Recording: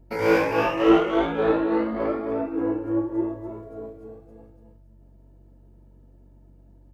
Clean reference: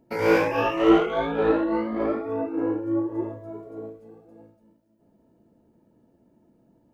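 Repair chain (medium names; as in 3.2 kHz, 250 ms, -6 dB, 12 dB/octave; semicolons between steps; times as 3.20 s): de-hum 47.1 Hz, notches 3; inverse comb 266 ms -8 dB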